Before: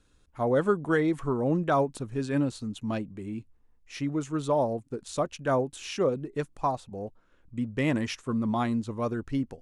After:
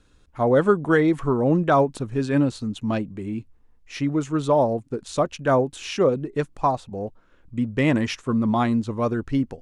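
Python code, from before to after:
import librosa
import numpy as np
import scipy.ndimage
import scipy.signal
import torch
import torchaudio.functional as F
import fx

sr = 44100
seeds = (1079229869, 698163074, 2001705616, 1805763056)

y = fx.high_shelf(x, sr, hz=9400.0, db=-10.0)
y = y * 10.0 ** (6.5 / 20.0)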